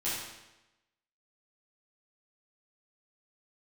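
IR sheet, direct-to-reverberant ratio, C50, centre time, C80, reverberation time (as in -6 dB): -10.5 dB, -0.5 dB, 74 ms, 3.0 dB, 1.0 s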